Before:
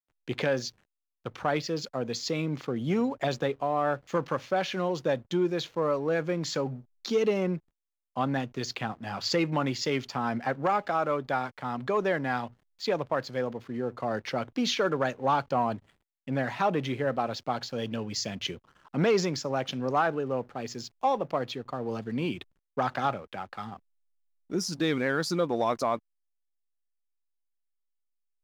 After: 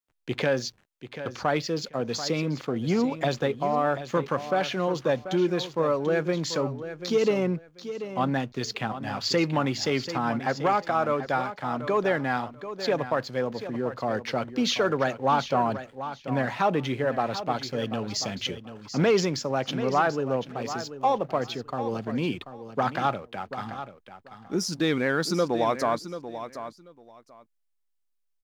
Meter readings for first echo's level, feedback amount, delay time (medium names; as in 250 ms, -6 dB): -11.5 dB, 18%, 737 ms